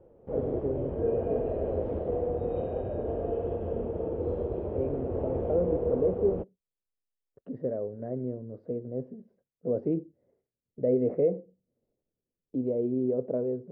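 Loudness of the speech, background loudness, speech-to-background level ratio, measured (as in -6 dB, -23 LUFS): -32.0 LUFS, -32.0 LUFS, 0.0 dB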